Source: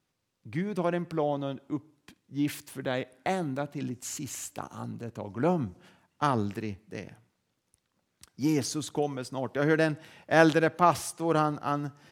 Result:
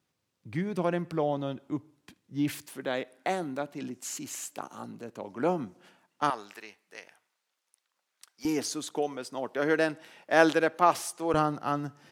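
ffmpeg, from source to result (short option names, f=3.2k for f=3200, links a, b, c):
-af "asetnsamples=n=441:p=0,asendcmd='2.66 highpass f 240;6.3 highpass f 840;8.45 highpass f 290;11.34 highpass f 130',highpass=63"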